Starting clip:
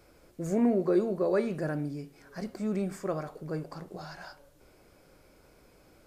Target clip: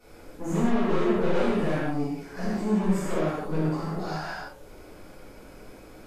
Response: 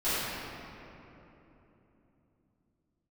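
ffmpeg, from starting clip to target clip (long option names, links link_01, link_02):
-filter_complex "[0:a]aeval=exprs='(tanh(63.1*val(0)+0.3)-tanh(0.3))/63.1':channel_layout=same[link_01];[1:a]atrim=start_sample=2205,afade=type=out:start_time=0.18:duration=0.01,atrim=end_sample=8379,asetrate=29106,aresample=44100[link_02];[link_01][link_02]afir=irnorm=-1:irlink=0"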